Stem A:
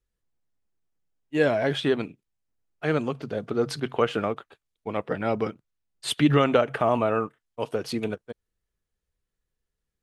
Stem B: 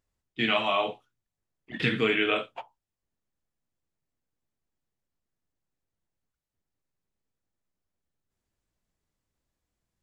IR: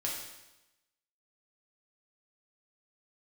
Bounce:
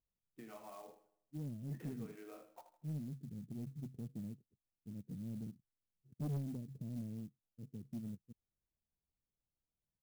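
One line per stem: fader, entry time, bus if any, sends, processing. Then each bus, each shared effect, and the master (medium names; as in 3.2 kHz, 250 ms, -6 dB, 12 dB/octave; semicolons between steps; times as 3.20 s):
-4.5 dB, 0.00 s, no send, no echo send, inverse Chebyshev low-pass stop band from 1.2 kHz, stop band 80 dB
-14.0 dB, 0.00 s, send -21 dB, echo send -11.5 dB, low-pass 1 kHz 12 dB/octave; compression 10:1, threshold -35 dBFS, peak gain reduction 14 dB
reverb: on, RT60 1.0 s, pre-delay 4 ms
echo: feedback delay 79 ms, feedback 39%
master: bass shelf 97 Hz -10.5 dB; saturation -35 dBFS, distortion -11 dB; sampling jitter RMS 0.045 ms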